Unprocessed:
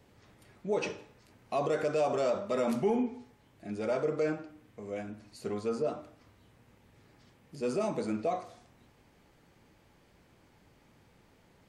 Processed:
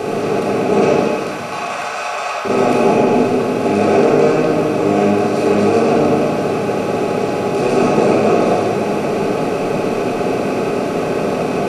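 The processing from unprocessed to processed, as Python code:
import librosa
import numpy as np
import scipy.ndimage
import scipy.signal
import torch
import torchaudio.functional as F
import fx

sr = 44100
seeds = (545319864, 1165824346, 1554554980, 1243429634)

y = fx.bin_compress(x, sr, power=0.2)
y = fx.highpass(y, sr, hz=840.0, slope=24, at=(0.99, 2.45))
y = fx.room_shoebox(y, sr, seeds[0], volume_m3=2200.0, walls='mixed', distance_m=3.7)
y = y * librosa.db_to_amplitude(3.0)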